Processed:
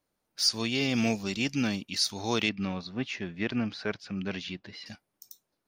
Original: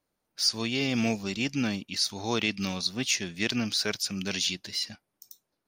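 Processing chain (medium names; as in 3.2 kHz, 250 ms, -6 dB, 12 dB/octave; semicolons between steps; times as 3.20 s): 2.49–4.86 s: low-pass 1.9 kHz 12 dB/octave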